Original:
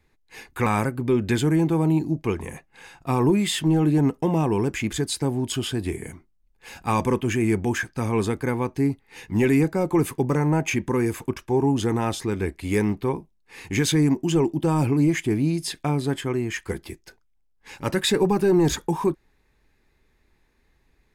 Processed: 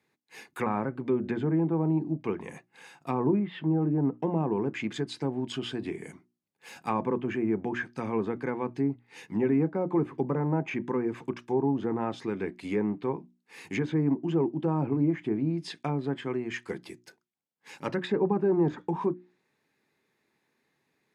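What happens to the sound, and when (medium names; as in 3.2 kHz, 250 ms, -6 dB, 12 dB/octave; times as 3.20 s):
3.39–4.13 s: distance through air 430 m
whole clip: low-pass that closes with the level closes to 1.2 kHz, closed at -18 dBFS; high-pass 140 Hz 24 dB/octave; hum notches 60/120/180/240/300/360 Hz; trim -5 dB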